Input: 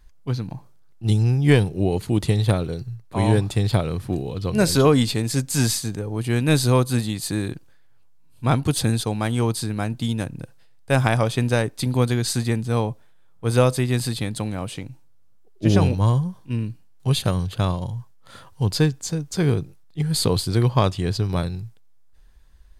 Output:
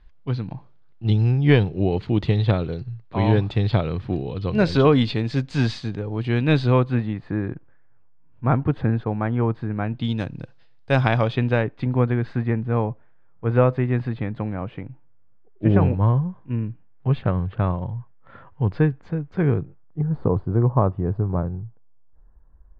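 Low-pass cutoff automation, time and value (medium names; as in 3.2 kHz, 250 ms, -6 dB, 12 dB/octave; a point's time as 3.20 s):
low-pass 24 dB/octave
6.49 s 3.8 kHz
7.25 s 1.9 kHz
9.74 s 1.9 kHz
10.17 s 4.7 kHz
10.95 s 4.7 kHz
12.01 s 2.1 kHz
19.53 s 2.1 kHz
20.05 s 1.2 kHz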